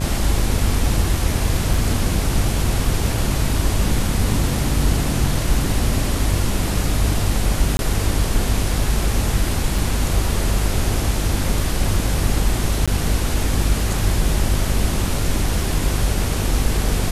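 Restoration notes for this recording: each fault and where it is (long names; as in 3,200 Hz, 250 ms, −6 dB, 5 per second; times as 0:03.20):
mains buzz 50 Hz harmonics 32 −23 dBFS
0:01.74: drop-out 2.6 ms
0:07.77–0:07.79: drop-out 21 ms
0:09.78: drop-out 3.5 ms
0:12.86–0:12.88: drop-out 16 ms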